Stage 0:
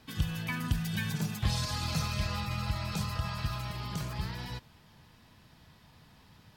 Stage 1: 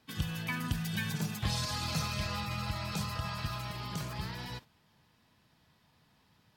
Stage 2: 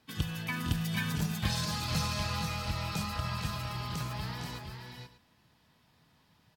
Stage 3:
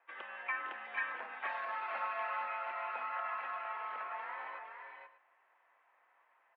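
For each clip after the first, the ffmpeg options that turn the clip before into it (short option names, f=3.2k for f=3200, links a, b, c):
-af "agate=range=-8dB:threshold=-45dB:ratio=16:detection=peak,lowshelf=f=72:g=-11"
-filter_complex "[0:a]asplit=2[a][b];[b]acrusher=bits=3:mix=0:aa=0.5,volume=-11.5dB[c];[a][c]amix=inputs=2:normalize=0,aecho=1:1:458|482|590:0.355|0.398|0.119"
-af "highpass=f=550:t=q:w=0.5412,highpass=f=550:t=q:w=1.307,lowpass=f=2.2k:t=q:w=0.5176,lowpass=f=2.2k:t=q:w=0.7071,lowpass=f=2.2k:t=q:w=1.932,afreqshift=54,volume=2dB"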